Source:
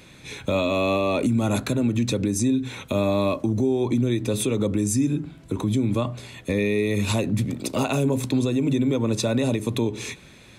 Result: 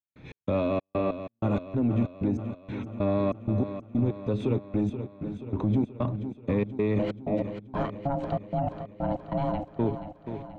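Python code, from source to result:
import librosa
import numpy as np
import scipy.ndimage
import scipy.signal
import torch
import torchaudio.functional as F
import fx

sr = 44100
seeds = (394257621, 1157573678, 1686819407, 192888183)

y = fx.spacing_loss(x, sr, db_at_10k=43)
y = fx.rider(y, sr, range_db=3, speed_s=2.0)
y = fx.step_gate(y, sr, bpm=95, pattern='.x.xx.x.', floor_db=-60.0, edge_ms=4.5)
y = 10.0 ** (-17.0 / 20.0) * np.tanh(y / 10.0 ** (-17.0 / 20.0))
y = fx.ring_mod(y, sr, carrier_hz=420.0, at=(6.99, 9.65))
y = fx.echo_feedback(y, sr, ms=480, feedback_pct=58, wet_db=-10)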